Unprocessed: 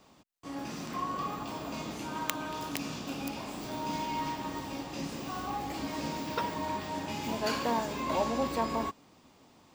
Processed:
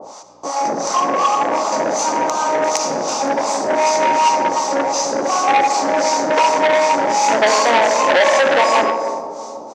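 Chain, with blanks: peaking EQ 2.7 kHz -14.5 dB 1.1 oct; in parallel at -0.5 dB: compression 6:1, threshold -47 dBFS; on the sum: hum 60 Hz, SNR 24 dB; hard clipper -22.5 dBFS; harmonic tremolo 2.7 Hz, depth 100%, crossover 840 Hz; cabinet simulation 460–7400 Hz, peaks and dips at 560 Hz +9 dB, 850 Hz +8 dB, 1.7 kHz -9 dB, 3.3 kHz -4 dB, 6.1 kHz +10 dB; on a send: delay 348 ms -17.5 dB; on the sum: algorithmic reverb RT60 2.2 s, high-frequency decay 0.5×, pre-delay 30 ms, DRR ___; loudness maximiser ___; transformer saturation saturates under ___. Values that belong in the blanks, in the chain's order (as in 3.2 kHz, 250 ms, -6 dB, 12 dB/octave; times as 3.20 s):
7 dB, +24 dB, 1.7 kHz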